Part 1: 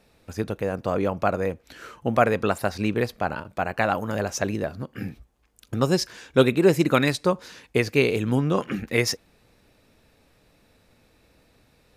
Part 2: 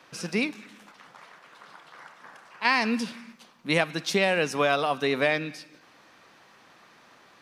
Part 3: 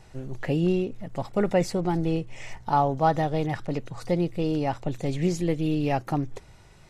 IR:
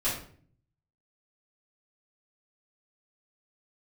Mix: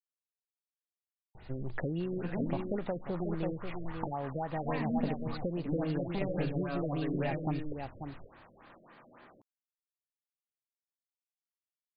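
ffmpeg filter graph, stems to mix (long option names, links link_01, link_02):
-filter_complex "[1:a]highshelf=frequency=2700:gain=-10,acrossover=split=190[link_01][link_02];[link_02]acompressor=threshold=-36dB:ratio=6[link_03];[link_01][link_03]amix=inputs=2:normalize=0,aeval=exprs='0.075*sin(PI/2*1.58*val(0)/0.075)':channel_layout=same,adelay=2000,volume=-9.5dB,asplit=2[link_04][link_05];[link_05]volume=-11dB[link_06];[2:a]aemphasis=mode=production:type=50fm,adelay=1350,volume=-0.5dB,asplit=2[link_07][link_08];[link_08]volume=-15.5dB[link_09];[link_07]adynamicequalizer=threshold=0.00251:dfrequency=8000:dqfactor=0.99:tfrequency=8000:tqfactor=0.99:attack=5:release=100:ratio=0.375:range=2.5:mode=boostabove:tftype=bell,acompressor=threshold=-31dB:ratio=20,volume=0dB[link_10];[3:a]atrim=start_sample=2205[link_11];[link_06][link_11]afir=irnorm=-1:irlink=0[link_12];[link_09]aecho=0:1:538:1[link_13];[link_04][link_10][link_12][link_13]amix=inputs=4:normalize=0,afftfilt=real='re*lt(b*sr/1024,630*pow(5000/630,0.5+0.5*sin(2*PI*3.6*pts/sr)))':imag='im*lt(b*sr/1024,630*pow(5000/630,0.5+0.5*sin(2*PI*3.6*pts/sr)))':win_size=1024:overlap=0.75"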